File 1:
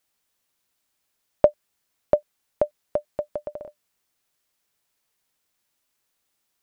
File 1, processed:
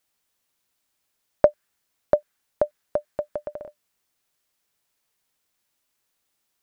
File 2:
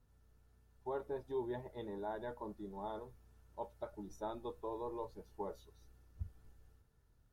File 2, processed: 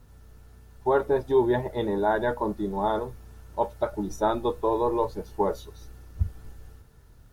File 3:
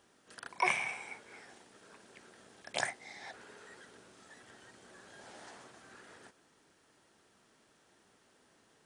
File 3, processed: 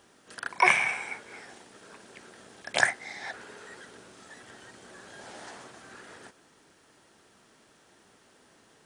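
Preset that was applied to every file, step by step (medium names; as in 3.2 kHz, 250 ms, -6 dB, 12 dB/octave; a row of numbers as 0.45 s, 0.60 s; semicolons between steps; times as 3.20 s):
dynamic bell 1.6 kHz, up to +7 dB, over -54 dBFS, Q 2.1; normalise loudness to -27 LUFS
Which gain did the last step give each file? 0.0 dB, +18.0 dB, +7.5 dB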